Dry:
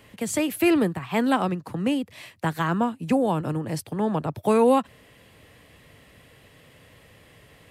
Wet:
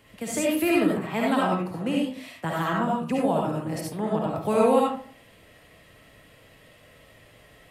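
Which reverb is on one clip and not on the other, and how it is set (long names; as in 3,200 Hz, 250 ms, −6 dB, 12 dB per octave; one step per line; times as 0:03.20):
comb and all-pass reverb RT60 0.45 s, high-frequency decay 0.55×, pre-delay 30 ms, DRR −3.5 dB
level −5 dB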